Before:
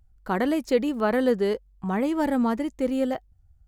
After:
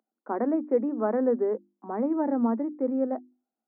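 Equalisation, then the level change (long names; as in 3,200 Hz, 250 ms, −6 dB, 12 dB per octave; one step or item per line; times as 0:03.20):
Gaussian smoothing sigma 7.1 samples
Chebyshev high-pass filter 220 Hz, order 6
mains-hum notches 50/100/150/200/250/300/350 Hz
0.0 dB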